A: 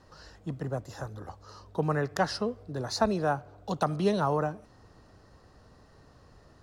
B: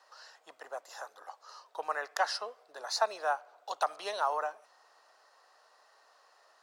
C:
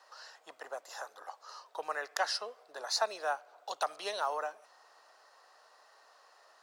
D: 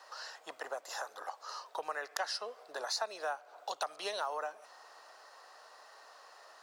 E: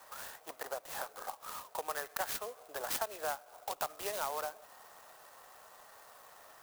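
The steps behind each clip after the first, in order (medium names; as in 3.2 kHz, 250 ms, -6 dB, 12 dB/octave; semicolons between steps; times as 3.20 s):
high-pass 660 Hz 24 dB/octave
dynamic bell 950 Hz, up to -6 dB, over -43 dBFS, Q 0.8; trim +2 dB
compression 2.5:1, threshold -43 dBFS, peak gain reduction 12 dB; trim +5.5 dB
sampling jitter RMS 0.071 ms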